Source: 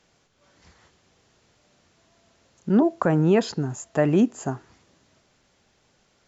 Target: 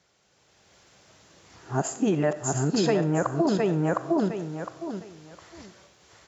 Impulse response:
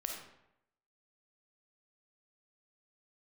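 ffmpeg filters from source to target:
-filter_complex "[0:a]areverse,equalizer=frequency=240:width_type=o:width=0.23:gain=-8.5,aecho=1:1:709|1418|2127:0.631|0.126|0.0252,acompressor=threshold=-24dB:ratio=10,asplit=2[link_01][link_02];[link_02]bass=frequency=250:gain=-12,treble=frequency=4000:gain=6[link_03];[1:a]atrim=start_sample=2205[link_04];[link_03][link_04]afir=irnorm=-1:irlink=0,volume=-7dB[link_05];[link_01][link_05]amix=inputs=2:normalize=0,dynaudnorm=framelen=140:gausssize=7:maxgain=8.5dB,highpass=57,volume=-5.5dB"

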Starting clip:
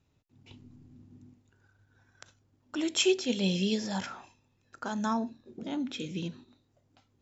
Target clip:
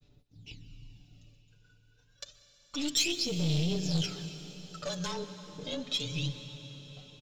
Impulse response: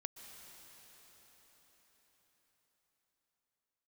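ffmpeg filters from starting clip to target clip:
-filter_complex "[0:a]aphaser=in_gain=1:out_gain=1:delay=2:decay=0.73:speed=0.28:type=sinusoidal,alimiter=limit=-19dB:level=0:latency=1:release=300,afreqshift=-29,aecho=1:1:6.9:0.82,aeval=exprs='(tanh(20*val(0)+0.35)-tanh(0.35))/20':channel_layout=same,equalizer=frequency=250:width_type=o:width=1:gain=-4,equalizer=frequency=1000:width_type=o:width=1:gain=-10,equalizer=frequency=2000:width_type=o:width=1:gain=-5,equalizer=frequency=4000:width_type=o:width=1:gain=9,agate=range=-33dB:threshold=-60dB:ratio=3:detection=peak,asplit=2[link_01][link_02];[1:a]atrim=start_sample=2205[link_03];[link_02][link_03]afir=irnorm=-1:irlink=0,volume=6dB[link_04];[link_01][link_04]amix=inputs=2:normalize=0,volume=-6dB"

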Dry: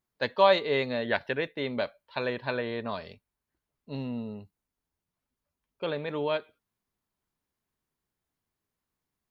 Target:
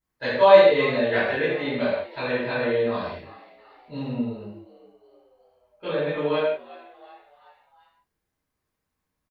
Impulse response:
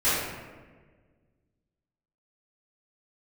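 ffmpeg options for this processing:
-filter_complex "[0:a]asplit=5[link_01][link_02][link_03][link_04][link_05];[link_02]adelay=366,afreqshift=94,volume=-20dB[link_06];[link_03]adelay=732,afreqshift=188,volume=-25.2dB[link_07];[link_04]adelay=1098,afreqshift=282,volume=-30.4dB[link_08];[link_05]adelay=1464,afreqshift=376,volume=-35.6dB[link_09];[link_01][link_06][link_07][link_08][link_09]amix=inputs=5:normalize=0[link_10];[1:a]atrim=start_sample=2205,afade=type=out:start_time=0.25:duration=0.01,atrim=end_sample=11466[link_11];[link_10][link_11]afir=irnorm=-1:irlink=0,volume=-9dB"

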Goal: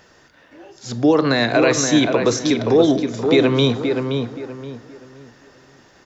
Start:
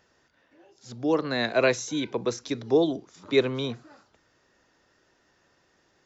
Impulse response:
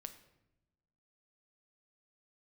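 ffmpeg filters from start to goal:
-filter_complex "[0:a]alimiter=limit=-21dB:level=0:latency=1:release=91,asplit=2[link_01][link_02];[link_02]adelay=524,lowpass=frequency=2100:poles=1,volume=-5dB,asplit=2[link_03][link_04];[link_04]adelay=524,lowpass=frequency=2100:poles=1,volume=0.31,asplit=2[link_05][link_06];[link_06]adelay=524,lowpass=frequency=2100:poles=1,volume=0.31,asplit=2[link_07][link_08];[link_08]adelay=524,lowpass=frequency=2100:poles=1,volume=0.31[link_09];[link_01][link_03][link_05][link_07][link_09]amix=inputs=5:normalize=0,asplit=2[link_10][link_11];[1:a]atrim=start_sample=2205[link_12];[link_11][link_12]afir=irnorm=-1:irlink=0,volume=5.5dB[link_13];[link_10][link_13]amix=inputs=2:normalize=0,volume=8dB"

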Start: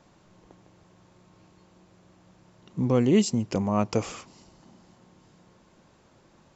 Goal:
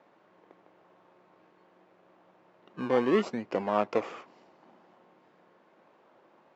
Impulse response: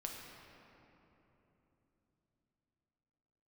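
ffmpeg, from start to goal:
-filter_complex "[0:a]asplit=2[link_01][link_02];[link_02]acrusher=samples=26:mix=1:aa=0.000001:lfo=1:lforange=15.6:lforate=0.77,volume=-6dB[link_03];[link_01][link_03]amix=inputs=2:normalize=0,highpass=450,lowpass=2100"

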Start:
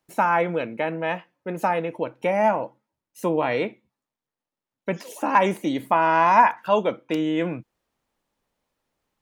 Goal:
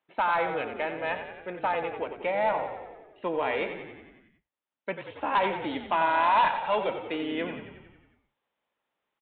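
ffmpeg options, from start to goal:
ffmpeg -i in.wav -filter_complex "[0:a]highpass=frequency=670:poles=1,aresample=8000,asoftclip=type=tanh:threshold=-16.5dB,aresample=44100,asplit=9[link_01][link_02][link_03][link_04][link_05][link_06][link_07][link_08][link_09];[link_02]adelay=91,afreqshift=-33,volume=-9dB[link_10];[link_03]adelay=182,afreqshift=-66,volume=-13dB[link_11];[link_04]adelay=273,afreqshift=-99,volume=-17dB[link_12];[link_05]adelay=364,afreqshift=-132,volume=-21dB[link_13];[link_06]adelay=455,afreqshift=-165,volume=-25.1dB[link_14];[link_07]adelay=546,afreqshift=-198,volume=-29.1dB[link_15];[link_08]adelay=637,afreqshift=-231,volume=-33.1dB[link_16];[link_09]adelay=728,afreqshift=-264,volume=-37.1dB[link_17];[link_01][link_10][link_11][link_12][link_13][link_14][link_15][link_16][link_17]amix=inputs=9:normalize=0,volume=-1.5dB" out.wav

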